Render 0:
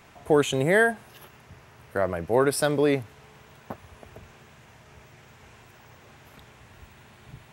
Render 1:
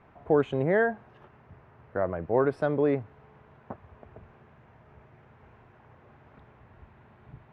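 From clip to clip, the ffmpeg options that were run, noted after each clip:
ffmpeg -i in.wav -af "lowpass=1400,volume=-2.5dB" out.wav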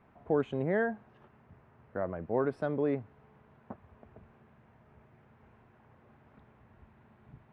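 ffmpeg -i in.wav -af "equalizer=frequency=220:width_type=o:width=0.62:gain=5.5,volume=-6.5dB" out.wav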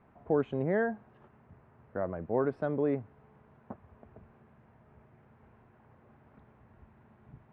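ffmpeg -i in.wav -af "aemphasis=mode=reproduction:type=75fm" out.wav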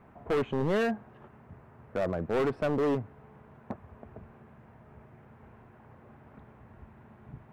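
ffmpeg -i in.wav -af "volume=30.5dB,asoftclip=hard,volume=-30.5dB,volume=6.5dB" out.wav

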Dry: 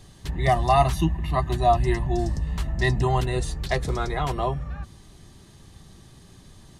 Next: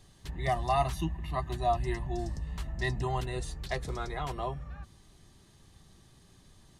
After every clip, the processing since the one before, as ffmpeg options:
ffmpeg -i in.wav -af "equalizer=frequency=150:width=0.31:gain=-2.5,volume=-8dB" out.wav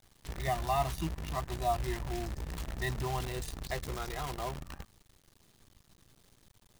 ffmpeg -i in.wav -af "acrusher=bits=7:dc=4:mix=0:aa=0.000001,volume=-3dB" out.wav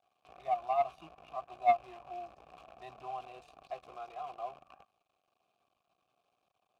ffmpeg -i in.wav -filter_complex "[0:a]asplit=3[link_01][link_02][link_03];[link_01]bandpass=frequency=730:width_type=q:width=8,volume=0dB[link_04];[link_02]bandpass=frequency=1090:width_type=q:width=8,volume=-6dB[link_05];[link_03]bandpass=frequency=2440:width_type=q:width=8,volume=-9dB[link_06];[link_04][link_05][link_06]amix=inputs=3:normalize=0,aeval=exprs='0.075*(cos(1*acos(clip(val(0)/0.075,-1,1)))-cos(1*PI/2))+0.015*(cos(3*acos(clip(val(0)/0.075,-1,1)))-cos(3*PI/2))+0.00237*(cos(5*acos(clip(val(0)/0.075,-1,1)))-cos(5*PI/2))':channel_layout=same,volume=8dB" out.wav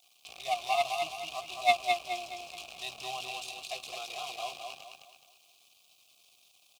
ffmpeg -i in.wav -af "aexciter=amount=12.9:drive=5.5:freq=2500,aecho=1:1:212|424|636|848|1060:0.596|0.226|0.086|0.0327|0.0124" out.wav

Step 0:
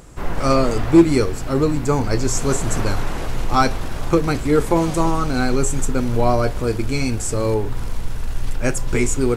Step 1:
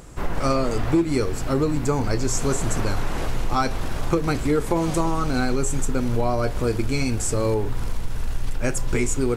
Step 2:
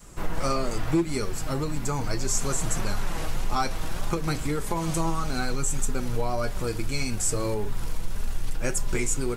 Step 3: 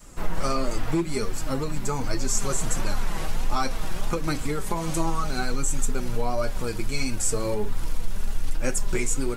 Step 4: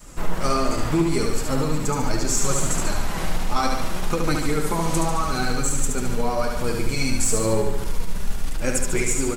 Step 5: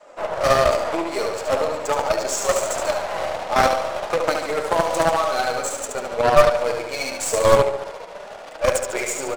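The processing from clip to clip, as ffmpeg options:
ffmpeg -i in.wav -af "acompressor=threshold=-17dB:ratio=5" out.wav
ffmpeg -i in.wav -af "adynamicequalizer=threshold=0.0158:dfrequency=370:dqfactor=1.1:tfrequency=370:tqfactor=1.1:attack=5:release=100:ratio=0.375:range=2.5:mode=cutabove:tftype=bell,flanger=delay=4.8:depth=1.6:regen=47:speed=1.7:shape=sinusoidal,highshelf=frequency=5100:gain=6.5" out.wav
ffmpeg -i in.wav -af "flanger=delay=3.1:depth=2.4:regen=53:speed=1.4:shape=triangular,volume=4.5dB" out.wav
ffmpeg -i in.wav -filter_complex "[0:a]asplit=2[link_01][link_02];[link_02]volume=19.5dB,asoftclip=hard,volume=-19.5dB,volume=-6.5dB[link_03];[link_01][link_03]amix=inputs=2:normalize=0,aecho=1:1:72|144|216|288|360|432|504|576:0.631|0.36|0.205|0.117|0.0666|0.038|0.0216|0.0123" out.wav
ffmpeg -i in.wav -af "highpass=frequency=600:width_type=q:width=4.9,adynamicsmooth=sensitivity=6.5:basefreq=2700,aeval=exprs='0.398*(cos(1*acos(clip(val(0)/0.398,-1,1)))-cos(1*PI/2))+0.2*(cos(2*acos(clip(val(0)/0.398,-1,1)))-cos(2*PI/2))+0.0398*(cos(8*acos(clip(val(0)/0.398,-1,1)))-cos(8*PI/2))':channel_layout=same" out.wav

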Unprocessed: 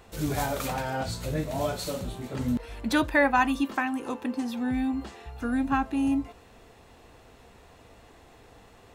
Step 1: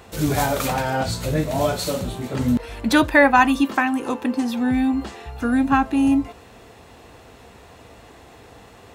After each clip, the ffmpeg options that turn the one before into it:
ffmpeg -i in.wav -af "highpass=53,volume=8dB" out.wav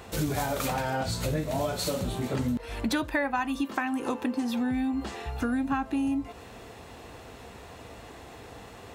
ffmpeg -i in.wav -af "acompressor=threshold=-26dB:ratio=6" out.wav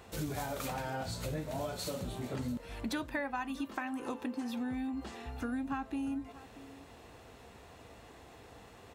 ffmpeg -i in.wav -af "aecho=1:1:635:0.126,volume=-8.5dB" out.wav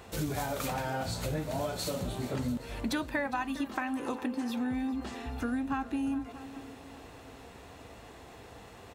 ffmpeg -i in.wav -af "aecho=1:1:408|816|1224|1632|2040:0.141|0.0791|0.0443|0.0248|0.0139,volume=4dB" out.wav

